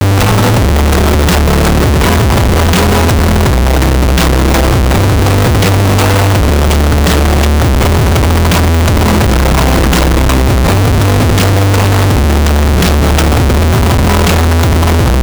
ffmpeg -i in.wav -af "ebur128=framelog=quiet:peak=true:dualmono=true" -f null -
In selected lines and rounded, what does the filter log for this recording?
Integrated loudness:
  I:          -6.0 LUFS
  Threshold: -16.0 LUFS
Loudness range:
  LRA:         0.2 LU
  Threshold: -26.1 LUFS
  LRA low:    -6.1 LUFS
  LRA high:   -6.0 LUFS
True peak:
  Peak:       -2.5 dBFS